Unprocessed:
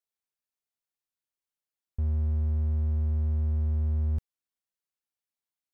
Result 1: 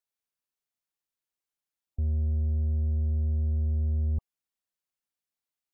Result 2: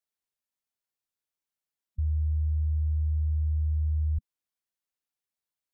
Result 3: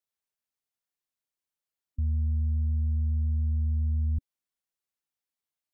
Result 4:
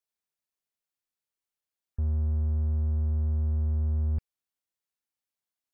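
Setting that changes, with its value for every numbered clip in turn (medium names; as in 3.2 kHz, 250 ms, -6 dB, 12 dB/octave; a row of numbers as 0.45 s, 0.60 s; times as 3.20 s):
spectral gate, under each frame's peak: -40 dB, -15 dB, -25 dB, -55 dB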